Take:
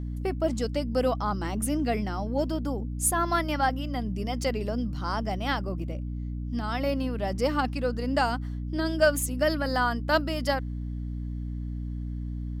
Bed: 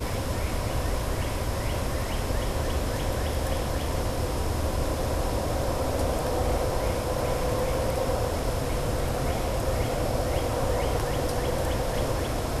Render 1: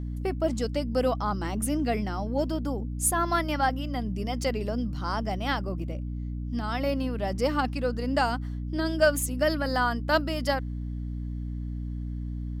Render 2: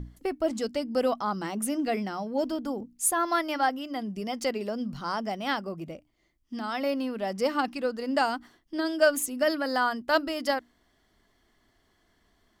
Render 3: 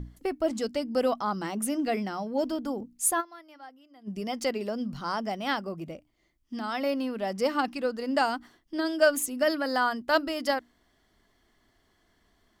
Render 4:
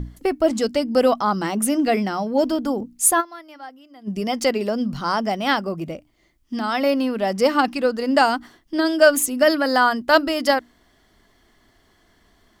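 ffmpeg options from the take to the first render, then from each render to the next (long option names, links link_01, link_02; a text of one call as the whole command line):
ffmpeg -i in.wav -af anull out.wav
ffmpeg -i in.wav -af "bandreject=frequency=60:width_type=h:width=6,bandreject=frequency=120:width_type=h:width=6,bandreject=frequency=180:width_type=h:width=6,bandreject=frequency=240:width_type=h:width=6,bandreject=frequency=300:width_type=h:width=6" out.wav
ffmpeg -i in.wav -filter_complex "[0:a]asplit=3[link_01][link_02][link_03];[link_01]atrim=end=3.34,asetpts=PTS-STARTPTS,afade=type=out:start_time=3.2:duration=0.14:curve=exp:silence=0.0841395[link_04];[link_02]atrim=start=3.34:end=3.94,asetpts=PTS-STARTPTS,volume=-21.5dB[link_05];[link_03]atrim=start=3.94,asetpts=PTS-STARTPTS,afade=type=in:duration=0.14:curve=exp:silence=0.0841395[link_06];[link_04][link_05][link_06]concat=n=3:v=0:a=1" out.wav
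ffmpeg -i in.wav -af "volume=9dB,alimiter=limit=-3dB:level=0:latency=1" out.wav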